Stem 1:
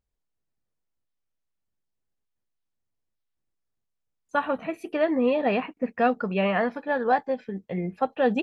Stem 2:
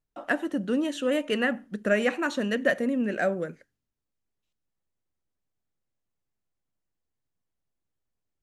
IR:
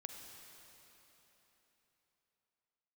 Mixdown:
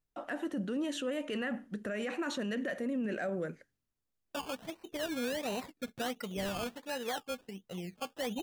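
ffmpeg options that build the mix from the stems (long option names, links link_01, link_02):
-filter_complex "[0:a]acrusher=samples=18:mix=1:aa=0.000001:lfo=1:lforange=10.8:lforate=1.4,equalizer=frequency=3100:width_type=o:width=0.77:gain=4,agate=range=-19dB:threshold=-46dB:ratio=16:detection=peak,volume=-12dB[link_01];[1:a]alimiter=limit=-15.5dB:level=0:latency=1:release=250,volume=-2dB[link_02];[link_01][link_02]amix=inputs=2:normalize=0,alimiter=level_in=4dB:limit=-24dB:level=0:latency=1:release=17,volume=-4dB"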